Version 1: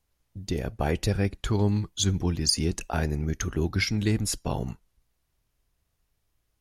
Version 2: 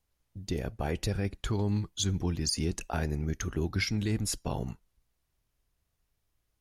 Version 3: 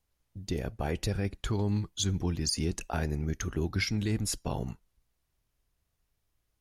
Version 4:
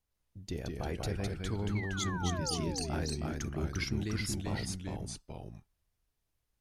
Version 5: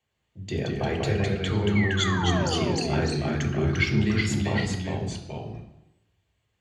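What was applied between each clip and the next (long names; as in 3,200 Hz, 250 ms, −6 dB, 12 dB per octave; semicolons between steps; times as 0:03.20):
brickwall limiter −15.5 dBFS, peak gain reduction 6 dB; level −3.5 dB
no processing that can be heard
sound drawn into the spectrogram fall, 0:01.75–0:02.86, 230–2,300 Hz −37 dBFS; delay with pitch and tempo change per echo 145 ms, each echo −1 semitone, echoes 2; level −6 dB
convolution reverb RT60 0.90 s, pre-delay 3 ms, DRR 1.5 dB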